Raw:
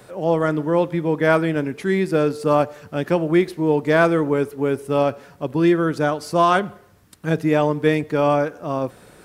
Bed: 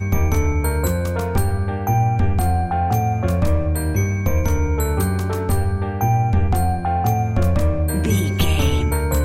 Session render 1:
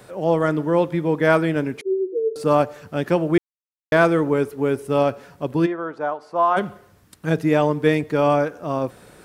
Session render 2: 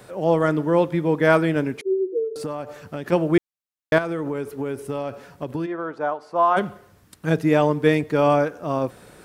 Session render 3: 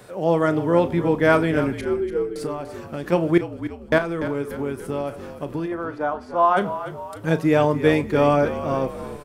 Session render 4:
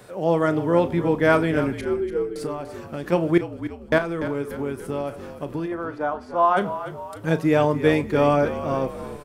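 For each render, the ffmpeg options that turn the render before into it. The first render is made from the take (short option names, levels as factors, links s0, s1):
-filter_complex "[0:a]asettb=1/sr,asplit=3[s0][s1][s2];[s0]atrim=end=1.814[s3];[s1]atrim=start=1.81:end=2.36,asetpts=PTS-STARTPTS,afade=t=in:d=0.004:c=qsin,afade=t=out:st=0.546:d=0.004:c=qsin,asuperpass=centerf=410:order=8:qfactor=3.5[s4];[s2]atrim=start=2.356[s5];[s3][s4]acrossfade=d=0.004:c1=hsin:c2=qsin[s6];[s6][s5]acrossfade=d=0.004:c1=qsin:c2=hsin,asplit=3[s7][s8][s9];[s7]afade=t=out:st=5.65:d=0.02[s10];[s8]bandpass=f=860:t=q:w=1.5,afade=t=in:st=5.65:d=0.02,afade=t=out:st=6.56:d=0.02[s11];[s9]afade=t=in:st=6.56:d=0.02[s12];[s10][s11][s12]amix=inputs=3:normalize=0,asplit=3[s13][s14][s15];[s13]atrim=end=3.38,asetpts=PTS-STARTPTS,afade=t=out:st=3.376:d=0.004:c=hsin[s16];[s14]atrim=start=3.38:end=3.92,asetpts=PTS-STARTPTS,volume=0[s17];[s15]atrim=start=3.92,asetpts=PTS-STARTPTS,afade=t=in:d=0.004:c=hsin[s18];[s16][s17][s18]concat=n=3:v=0:a=1"
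-filter_complex "[0:a]asplit=3[s0][s1][s2];[s0]afade=t=out:st=2.23:d=0.02[s3];[s1]acompressor=threshold=0.0631:ratio=16:attack=3.2:release=140:knee=1:detection=peak,afade=t=in:st=2.23:d=0.02,afade=t=out:st=3.11:d=0.02[s4];[s2]afade=t=in:st=3.11:d=0.02[s5];[s3][s4][s5]amix=inputs=3:normalize=0,asettb=1/sr,asplit=3[s6][s7][s8];[s6]atrim=end=3.984[s9];[s7]atrim=start=3.98:end=5.99,asetpts=PTS-STARTPTS,afade=t=in:d=0.004:c=qsin,afade=t=out:st=2.006:d=0.004:c=qsin,acompressor=threshold=0.0794:ratio=12:attack=3.2:release=140:knee=1:detection=peak[s10];[s8]atrim=start=5.986[s11];[s9][s10]acrossfade=d=0.004:c1=hsin:c2=qsin[s12];[s12][s11]acrossfade=d=0.004:c1=qsin:c2=hsin"
-filter_complex "[0:a]asplit=2[s0][s1];[s1]adelay=35,volume=0.211[s2];[s0][s2]amix=inputs=2:normalize=0,asplit=6[s3][s4][s5][s6][s7][s8];[s4]adelay=292,afreqshift=-48,volume=0.251[s9];[s5]adelay=584,afreqshift=-96,volume=0.129[s10];[s6]adelay=876,afreqshift=-144,volume=0.0653[s11];[s7]adelay=1168,afreqshift=-192,volume=0.0335[s12];[s8]adelay=1460,afreqshift=-240,volume=0.017[s13];[s3][s9][s10][s11][s12][s13]amix=inputs=6:normalize=0"
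-af "volume=0.891"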